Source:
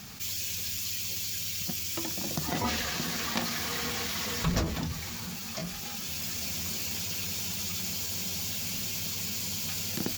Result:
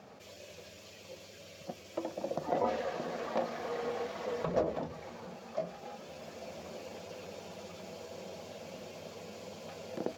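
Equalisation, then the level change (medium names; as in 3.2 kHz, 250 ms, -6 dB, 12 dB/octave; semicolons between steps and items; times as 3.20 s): band-pass filter 560 Hz, Q 3.5; +10.0 dB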